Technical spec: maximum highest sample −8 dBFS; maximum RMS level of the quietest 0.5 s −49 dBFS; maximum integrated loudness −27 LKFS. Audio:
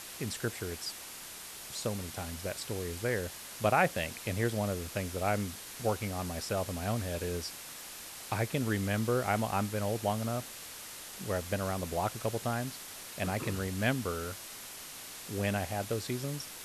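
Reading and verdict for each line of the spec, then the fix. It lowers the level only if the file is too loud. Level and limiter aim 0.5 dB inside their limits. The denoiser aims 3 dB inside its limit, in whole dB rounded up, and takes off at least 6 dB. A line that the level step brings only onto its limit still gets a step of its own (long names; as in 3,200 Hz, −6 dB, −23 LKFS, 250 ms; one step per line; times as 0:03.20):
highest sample −12.5 dBFS: in spec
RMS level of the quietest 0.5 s −46 dBFS: out of spec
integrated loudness −34.5 LKFS: in spec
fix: broadband denoise 6 dB, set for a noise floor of −46 dBFS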